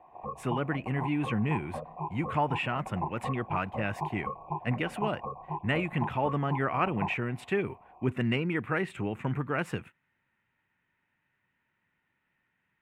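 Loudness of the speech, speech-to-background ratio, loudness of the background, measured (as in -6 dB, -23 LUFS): -32.0 LUFS, 7.0 dB, -39.0 LUFS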